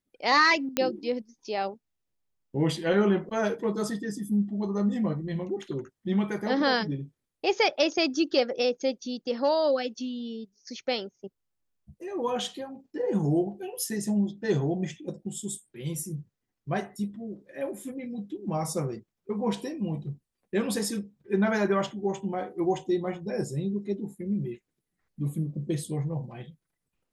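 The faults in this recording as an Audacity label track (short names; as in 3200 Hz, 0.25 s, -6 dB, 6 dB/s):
0.770000	0.770000	pop -9 dBFS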